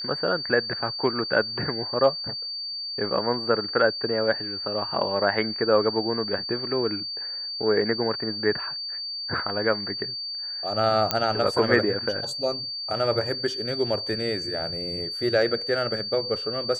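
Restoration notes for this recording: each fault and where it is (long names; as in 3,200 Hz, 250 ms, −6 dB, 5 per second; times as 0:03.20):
whistle 4,600 Hz −30 dBFS
0:11.11: click −6 dBFS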